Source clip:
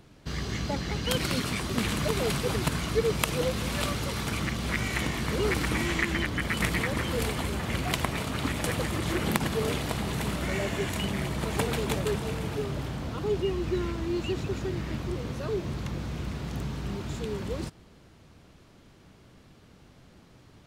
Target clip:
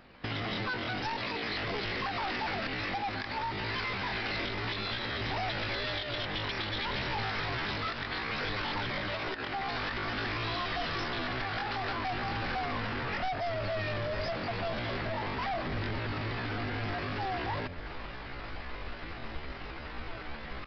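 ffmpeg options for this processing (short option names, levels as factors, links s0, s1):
-af "flanger=delay=0.3:depth=2.4:regen=83:speed=0.57:shape=triangular,aecho=1:1:105|210|315:0.0891|0.0303|0.0103,dynaudnorm=f=230:g=3:m=5.62,bandreject=f=50:t=h:w=6,bandreject=f=100:t=h:w=6,bandreject=f=150:t=h:w=6,bandreject=f=200:t=h:w=6,bandreject=f=250:t=h:w=6,bandreject=f=300:t=h:w=6,bandreject=f=350:t=h:w=6,asetrate=78577,aresample=44100,atempo=0.561231,alimiter=limit=0.282:level=0:latency=1:release=444,equalizer=f=1700:t=o:w=1.8:g=10.5,aresample=11025,asoftclip=type=hard:threshold=0.106,aresample=44100,acompressor=threshold=0.0224:ratio=6,asubboost=boost=6:cutoff=59"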